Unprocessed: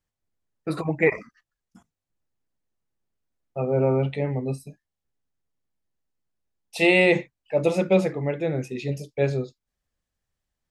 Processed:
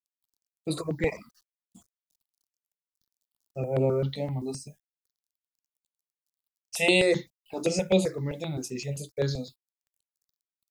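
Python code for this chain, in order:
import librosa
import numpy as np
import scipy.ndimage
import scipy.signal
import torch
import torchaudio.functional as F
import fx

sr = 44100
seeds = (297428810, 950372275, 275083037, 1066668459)

y = fx.quant_dither(x, sr, seeds[0], bits=12, dither='none')
y = fx.high_shelf_res(y, sr, hz=3200.0, db=11.0, q=1.5)
y = fx.phaser_held(y, sr, hz=7.7, low_hz=380.0, high_hz=5400.0)
y = F.gain(torch.from_numpy(y), -2.0).numpy()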